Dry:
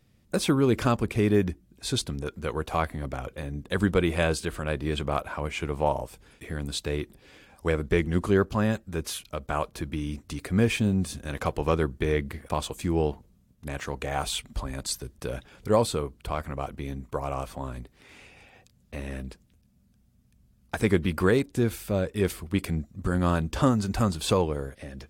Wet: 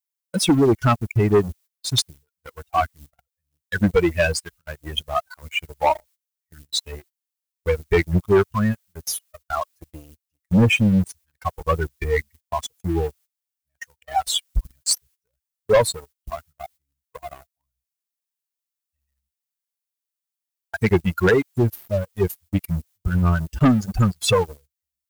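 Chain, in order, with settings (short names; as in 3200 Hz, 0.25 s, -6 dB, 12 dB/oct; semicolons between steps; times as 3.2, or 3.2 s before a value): per-bin expansion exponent 3; added noise blue -68 dBFS; sample leveller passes 3; gate -51 dBFS, range -19 dB; gain +5 dB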